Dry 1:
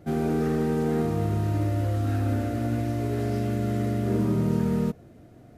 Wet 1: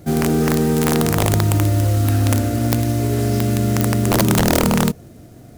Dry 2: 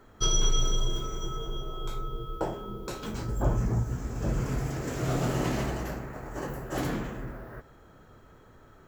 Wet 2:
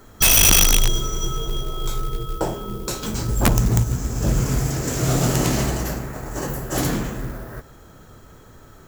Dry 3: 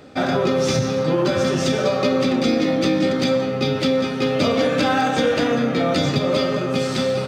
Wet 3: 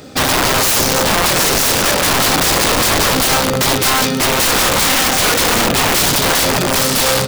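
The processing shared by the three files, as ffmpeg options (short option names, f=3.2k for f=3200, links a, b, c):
-af "bass=f=250:g=3,treble=f=4k:g=11,aeval=exprs='(mod(5.62*val(0)+1,2)-1)/5.62':c=same,acrusher=bits=5:mode=log:mix=0:aa=0.000001,volume=6.5dB"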